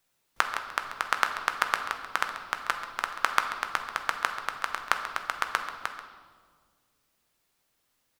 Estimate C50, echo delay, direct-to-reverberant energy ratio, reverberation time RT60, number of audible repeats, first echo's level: 7.0 dB, 0.136 s, 4.5 dB, 1.7 s, 1, -13.0 dB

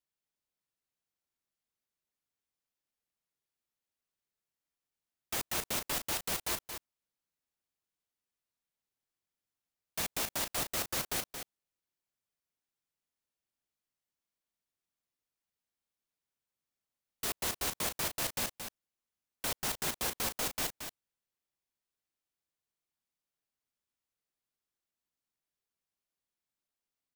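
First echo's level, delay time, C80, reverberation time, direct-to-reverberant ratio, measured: -8.0 dB, 0.225 s, none, none, none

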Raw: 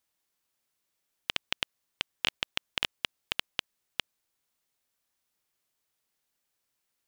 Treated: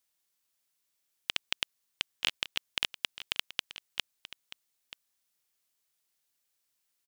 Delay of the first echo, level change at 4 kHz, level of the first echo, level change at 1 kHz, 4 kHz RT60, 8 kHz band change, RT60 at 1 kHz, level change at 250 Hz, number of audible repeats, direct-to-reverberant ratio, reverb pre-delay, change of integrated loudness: 0.932 s, 0.0 dB, -15.0 dB, -4.0 dB, none, +2.0 dB, none, -5.0 dB, 1, none, none, -0.5 dB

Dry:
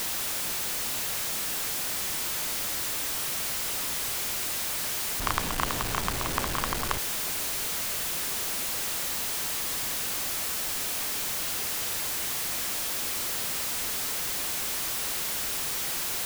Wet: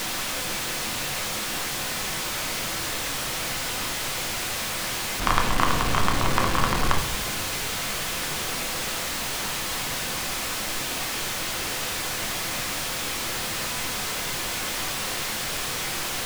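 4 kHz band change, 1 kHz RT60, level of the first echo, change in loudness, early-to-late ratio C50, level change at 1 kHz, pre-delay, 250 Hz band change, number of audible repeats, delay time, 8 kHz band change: +4.5 dB, 0.65 s, none, +1.5 dB, 9.5 dB, +7.0 dB, 4 ms, +8.0 dB, none, none, +1.0 dB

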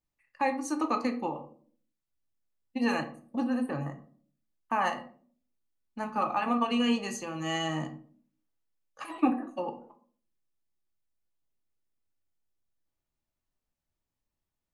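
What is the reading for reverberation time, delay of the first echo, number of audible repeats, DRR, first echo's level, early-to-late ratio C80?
0.50 s, none, none, 4.5 dB, none, 17.0 dB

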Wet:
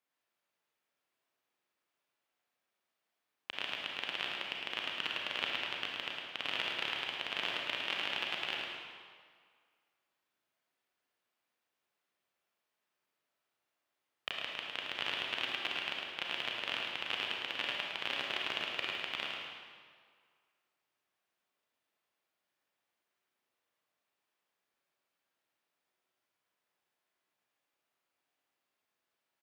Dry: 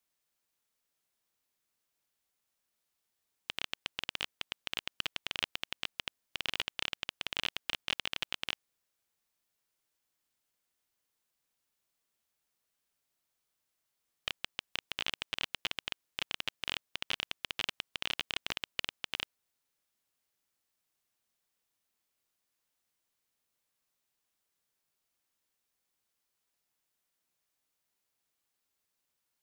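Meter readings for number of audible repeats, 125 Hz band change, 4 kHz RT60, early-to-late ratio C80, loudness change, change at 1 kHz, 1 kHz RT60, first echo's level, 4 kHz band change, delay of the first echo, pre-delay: 1, -3.5 dB, 1.5 s, 0.0 dB, +1.0 dB, +4.0 dB, 2.0 s, -5.0 dB, +0.5 dB, 0.107 s, 30 ms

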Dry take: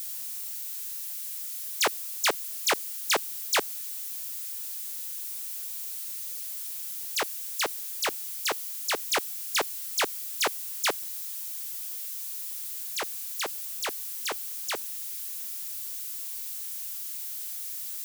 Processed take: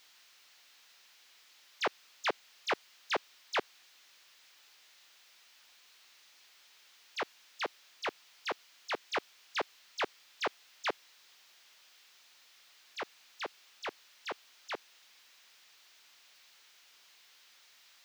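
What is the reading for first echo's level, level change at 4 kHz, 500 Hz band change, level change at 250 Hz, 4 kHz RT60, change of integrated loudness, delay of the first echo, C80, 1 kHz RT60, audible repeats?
none, -11.0 dB, -5.0 dB, -5.0 dB, none, -9.0 dB, none, none, none, none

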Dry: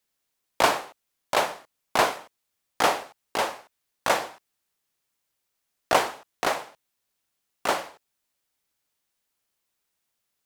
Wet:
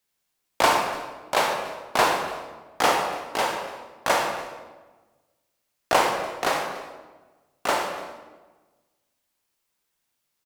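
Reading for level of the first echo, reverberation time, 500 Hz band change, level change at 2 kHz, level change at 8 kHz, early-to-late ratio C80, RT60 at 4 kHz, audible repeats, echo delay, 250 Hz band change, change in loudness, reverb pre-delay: -19.5 dB, 1.3 s, +2.0 dB, +2.5 dB, +2.0 dB, 5.0 dB, 0.95 s, 1, 0.289 s, +2.5 dB, +1.5 dB, 24 ms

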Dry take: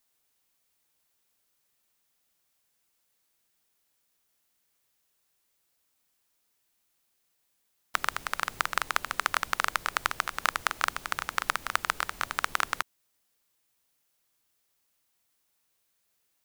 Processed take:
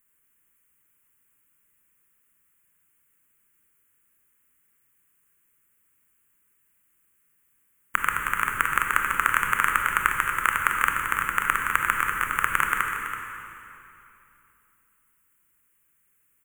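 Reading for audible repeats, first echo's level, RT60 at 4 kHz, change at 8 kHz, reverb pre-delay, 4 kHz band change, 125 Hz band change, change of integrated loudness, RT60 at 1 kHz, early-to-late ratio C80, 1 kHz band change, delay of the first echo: 1, -11.0 dB, 2.5 s, +3.5 dB, 23 ms, -3.5 dB, +9.0 dB, +6.5 dB, 2.8 s, 3.0 dB, +6.5 dB, 0.329 s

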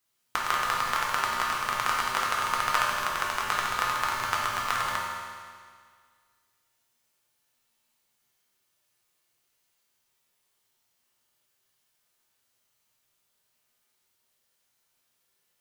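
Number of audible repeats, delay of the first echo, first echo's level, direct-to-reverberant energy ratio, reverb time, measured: none, none, none, -4.5 dB, 1.9 s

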